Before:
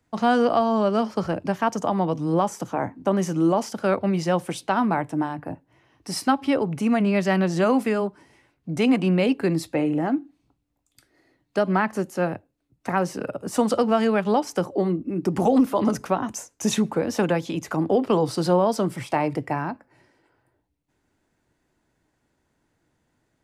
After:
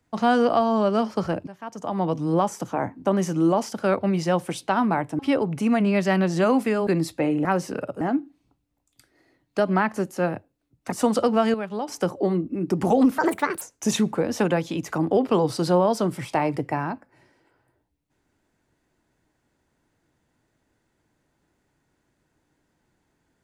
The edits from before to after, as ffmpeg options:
ffmpeg -i in.wav -filter_complex "[0:a]asplit=11[link_01][link_02][link_03][link_04][link_05][link_06][link_07][link_08][link_09][link_10][link_11];[link_01]atrim=end=1.47,asetpts=PTS-STARTPTS,afade=type=out:start_time=1.466:duration=0.004:curve=hsin:silence=0.125893[link_12];[link_02]atrim=start=1.47:end=5.192,asetpts=PTS-STARTPTS,afade=type=in:duration=0.6:curve=qua:silence=0.125893[link_13];[link_03]atrim=start=6.388:end=8.072[link_14];[link_04]atrim=start=9.418:end=10.002[link_15];[link_05]atrim=start=12.908:end=13.472[link_16];[link_06]atrim=start=9.998:end=12.912[link_17];[link_07]atrim=start=13.468:end=14.092[link_18];[link_08]atrim=start=14.088:end=14.432,asetpts=PTS-STARTPTS,volume=-8.5dB[link_19];[link_09]atrim=start=14.428:end=15.734[link_20];[link_10]atrim=start=15.73:end=16.4,asetpts=PTS-STARTPTS,asetrate=67914,aresample=44100,atrim=end_sample=19186,asetpts=PTS-STARTPTS[link_21];[link_11]atrim=start=16.396[link_22];[link_12][link_13]concat=n=2:v=0:a=1[link_23];[link_23][link_14]acrossfade=duration=0.004:curve1=hsin:curve2=hsin[link_24];[link_24][link_15]acrossfade=duration=0.004:curve1=hsin:curve2=hsin[link_25];[link_25][link_16]acrossfade=duration=0.004:curve1=hsin:curve2=hsin[link_26];[link_26][link_17]acrossfade=duration=0.004:curve1=hsin:curve2=hsin[link_27];[link_27][link_18]acrossfade=duration=0.004:curve1=hsin:curve2=hsin[link_28];[link_28][link_19]acrossfade=duration=0.004:curve1=hsin:curve2=hsin[link_29];[link_29][link_20]acrossfade=duration=0.004:curve1=hsin:curve2=hsin[link_30];[link_30][link_21]acrossfade=duration=0.004:curve1=hsin:curve2=hsin[link_31];[link_31][link_22]acrossfade=duration=0.004:curve1=hsin:curve2=hsin" out.wav

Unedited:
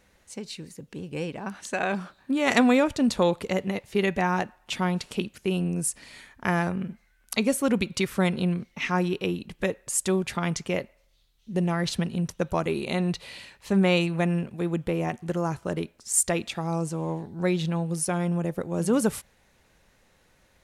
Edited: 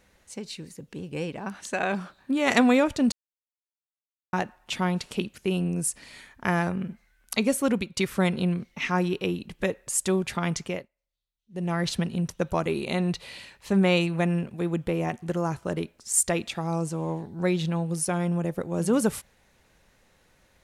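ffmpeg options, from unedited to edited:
ffmpeg -i in.wav -filter_complex "[0:a]asplit=6[link_01][link_02][link_03][link_04][link_05][link_06];[link_01]atrim=end=3.12,asetpts=PTS-STARTPTS,afade=type=out:start_time=3.116:duration=0.004:curve=hsin[link_07];[link_02]atrim=start=3.12:end=4.33,asetpts=PTS-STARTPTS,volume=0[link_08];[link_03]atrim=start=4.33:end=7.97,asetpts=PTS-STARTPTS,afade=type=in:duration=0.004:curve=hsin,afade=type=out:start_time=3.35:duration=0.29:silence=0.266073[link_09];[link_04]atrim=start=7.97:end=10.89,asetpts=PTS-STARTPTS,afade=type=in:duration=0.004:curve=hsin:silence=0.266073,afade=type=out:start_time=2.66:duration=0.26:silence=0.0749894[link_10];[link_05]atrim=start=10.89:end=11.49,asetpts=PTS-STARTPTS,volume=-22.5dB[link_11];[link_06]atrim=start=11.49,asetpts=PTS-STARTPTS,afade=type=in:duration=0.26:silence=0.0749894[link_12];[link_07][link_08][link_09][link_10][link_11][link_12]concat=n=6:v=0:a=1" out.wav

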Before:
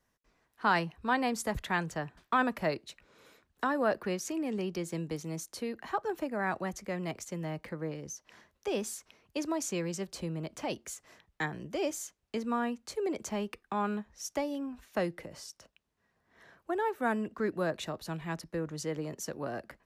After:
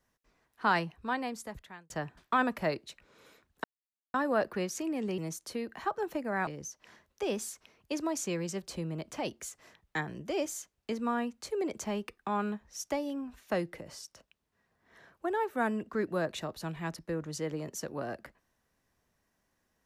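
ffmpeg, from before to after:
ffmpeg -i in.wav -filter_complex "[0:a]asplit=5[link_01][link_02][link_03][link_04][link_05];[link_01]atrim=end=1.9,asetpts=PTS-STARTPTS,afade=type=out:start_time=0.69:duration=1.21[link_06];[link_02]atrim=start=1.9:end=3.64,asetpts=PTS-STARTPTS,afade=type=in:duration=0.004:curve=hsin,afade=type=out:start_time=1.736:duration=0.004:curve=hsin,apad=pad_dur=0.5[link_07];[link_03]atrim=start=3.64:end=4.682,asetpts=PTS-STARTPTS,afade=type=in:duration=0.004:curve=hsin[link_08];[link_04]atrim=start=5.248:end=6.542[link_09];[link_05]atrim=start=7.918[link_10];[link_06][link_07][link_08]concat=n=3:v=0:a=1[link_11];[link_11][link_09]acrossfade=duration=0.004:curve1=hsin:curve2=hsin[link_12];[link_12][link_10]acrossfade=duration=0.004:curve1=hsin:curve2=hsin" out.wav

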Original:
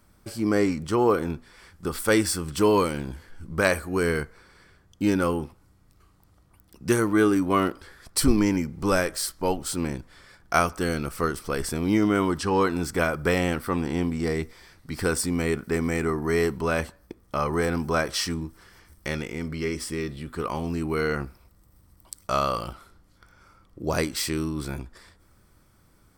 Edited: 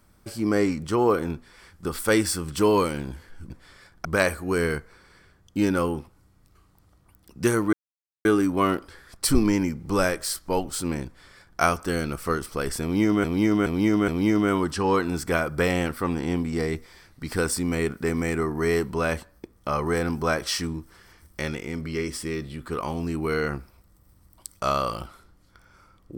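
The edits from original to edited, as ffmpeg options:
ffmpeg -i in.wav -filter_complex "[0:a]asplit=7[link_01][link_02][link_03][link_04][link_05][link_06][link_07];[link_01]atrim=end=3.502[link_08];[link_02]atrim=start=9.978:end=10.532[link_09];[link_03]atrim=start=3.498:end=7.18,asetpts=PTS-STARTPTS,afade=type=out:start_time=3.678:duration=0.004:curve=hsin,apad=pad_dur=0.52[link_10];[link_04]atrim=start=7.18:end=12.172,asetpts=PTS-STARTPTS,afade=type=in:duration=0.004:curve=hsin[link_11];[link_05]atrim=start=11.748:end=12.172[link_12];[link_06]atrim=start=11.748:end=12.172[link_13];[link_07]atrim=start=11.748[link_14];[link_08][link_09]acrossfade=duration=0.004:curve1=hsin:curve2=hsin[link_15];[link_10][link_11]concat=n=2:v=0:a=1[link_16];[link_15][link_16]acrossfade=duration=0.004:curve1=hsin:curve2=hsin[link_17];[link_17][link_12]acrossfade=duration=0.004:curve1=hsin:curve2=hsin[link_18];[link_18][link_13]acrossfade=duration=0.004:curve1=hsin:curve2=hsin[link_19];[link_19][link_14]acrossfade=duration=0.004:curve1=hsin:curve2=hsin" out.wav

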